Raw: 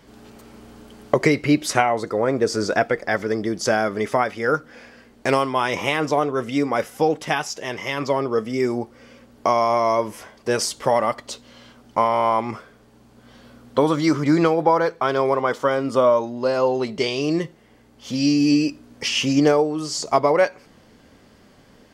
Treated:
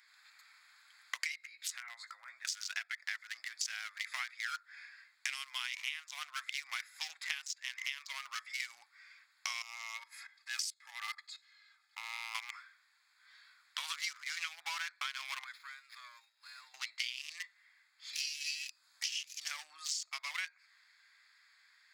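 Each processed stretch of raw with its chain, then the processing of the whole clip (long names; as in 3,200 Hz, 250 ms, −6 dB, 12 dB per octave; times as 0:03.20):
0:01.38–0:02.45: high-shelf EQ 8,900 Hz +5 dB + downward compressor 5 to 1, threshold −30 dBFS + double-tracking delay 17 ms −5.5 dB
0:09.62–0:12.35: output level in coarse steps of 14 dB + comb filter 2.4 ms, depth 72%
0:15.44–0:16.74: first-order pre-emphasis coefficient 0.97 + windowed peak hold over 5 samples
0:18.68–0:19.51: parametric band 2,100 Hz −11.5 dB 1.3 octaves + multiband upward and downward compressor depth 40%
whole clip: adaptive Wiener filter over 15 samples; inverse Chebyshev high-pass filter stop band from 470 Hz, stop band 70 dB; downward compressor 16 to 1, threshold −44 dBFS; level +9 dB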